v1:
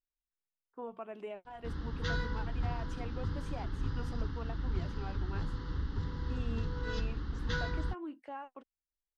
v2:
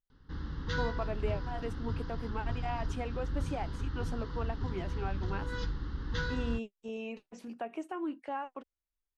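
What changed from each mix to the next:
speech +6.5 dB; background: entry -1.35 s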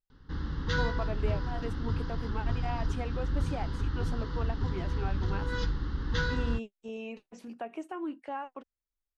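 background +4.5 dB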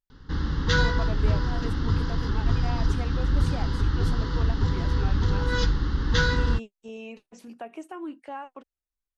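background +7.5 dB; master: add high shelf 6300 Hz +9 dB

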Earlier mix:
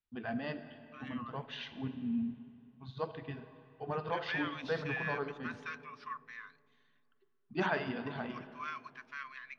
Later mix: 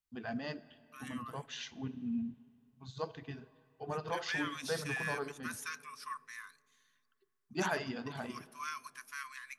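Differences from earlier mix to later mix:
first voice: send -9.5 dB; master: remove LPF 3700 Hz 24 dB/oct

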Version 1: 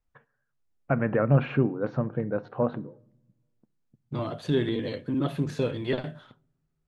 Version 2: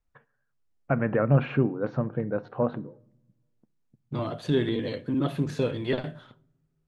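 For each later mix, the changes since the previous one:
second voice: send +6.0 dB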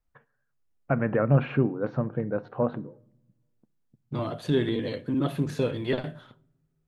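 second voice: remove air absorption 59 m; master: add high shelf 6700 Hz -8 dB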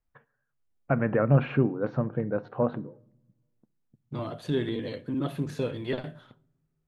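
second voice -3.5 dB

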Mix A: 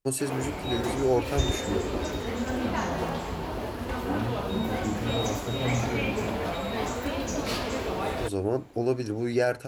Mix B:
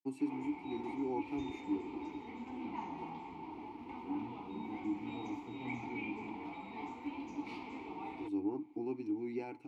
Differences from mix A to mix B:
background: add bell 280 Hz -5.5 dB 0.77 oct; master: add vowel filter u

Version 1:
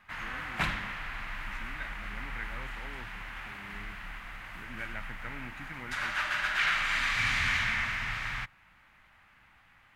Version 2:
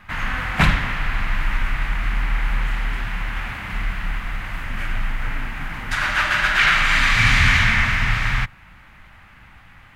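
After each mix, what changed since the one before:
background +11.5 dB; master: add low shelf 250 Hz +9.5 dB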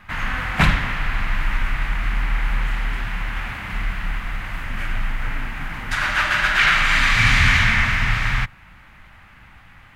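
none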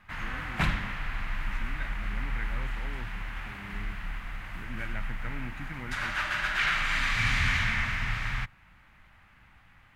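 background -11.0 dB

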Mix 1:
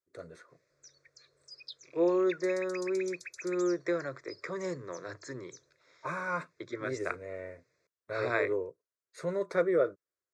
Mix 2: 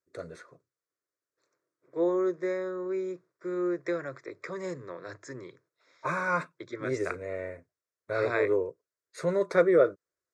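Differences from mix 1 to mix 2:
first voice +5.5 dB; background: muted

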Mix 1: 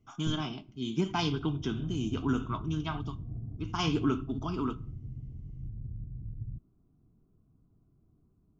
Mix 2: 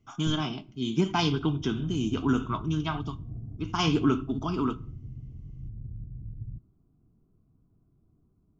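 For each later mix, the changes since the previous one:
speech +4.5 dB; background: send on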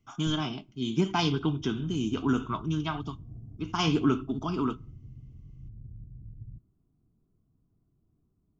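speech: send -8.0 dB; background -5.5 dB

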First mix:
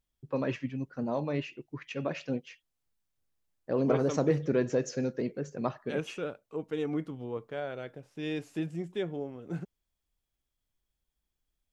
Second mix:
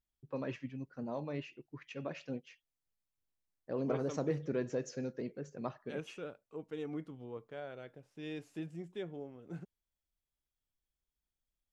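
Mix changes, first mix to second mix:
first voice -8.0 dB; second voice -8.5 dB

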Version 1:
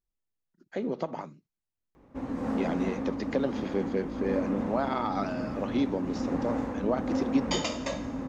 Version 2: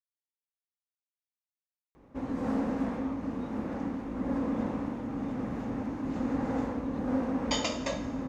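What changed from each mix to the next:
speech: muted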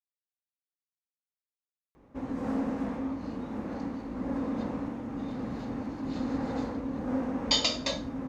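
second sound: add bell 4200 Hz +15 dB 0.82 oct; reverb: off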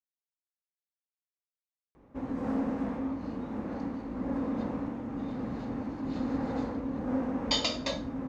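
master: add high shelf 3700 Hz -6.5 dB

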